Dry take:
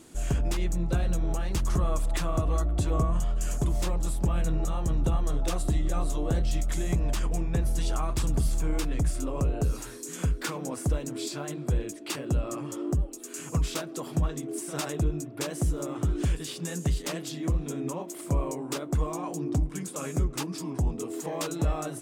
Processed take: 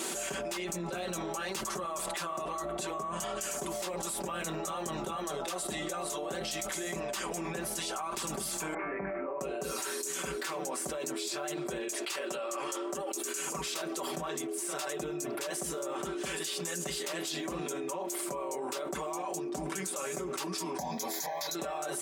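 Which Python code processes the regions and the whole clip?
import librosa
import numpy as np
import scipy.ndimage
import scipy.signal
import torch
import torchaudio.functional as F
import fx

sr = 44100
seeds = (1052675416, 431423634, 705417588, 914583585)

y = fx.chain(x, sr, fx.cheby1_lowpass(hz=2300.0, order=6),
    fx.comb_fb(f0_hz=98.0, decay_s=0.43, harmonics='all', damping=0.0, mix_pct=80), at=(8.74, 9.41))
y = fx.chain(y, sr, fx.highpass(hz=620.0, slope=6),
    fx.doppler_dist(depth_ms=0.12), at=(11.88, 13.15))
y = fx.chain(y, sr, fx.highpass(hz=96.0, slope=12),
    fx.high_shelf(hz=3800.0, db=7.5),
    fx.fixed_phaser(hz=1900.0, stages=8), at=(20.78, 21.55))
y = scipy.signal.sosfilt(scipy.signal.butter(2, 460.0, 'highpass', fs=sr, output='sos'), y)
y = y + 0.74 * np.pad(y, (int(5.2 * sr / 1000.0), 0))[:len(y)]
y = fx.env_flatten(y, sr, amount_pct=100)
y = y * 10.0 ** (-7.5 / 20.0)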